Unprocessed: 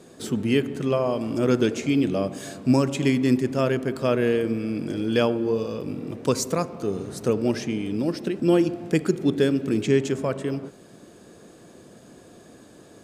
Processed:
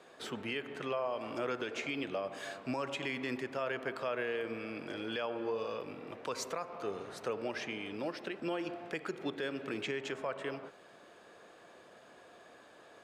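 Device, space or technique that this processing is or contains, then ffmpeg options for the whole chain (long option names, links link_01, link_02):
DJ mixer with the lows and highs turned down: -filter_complex "[0:a]acrossover=split=570 3600:gain=0.1 1 0.158[link_01][link_02][link_03];[link_01][link_02][link_03]amix=inputs=3:normalize=0,alimiter=level_in=2.5dB:limit=-24dB:level=0:latency=1:release=127,volume=-2.5dB"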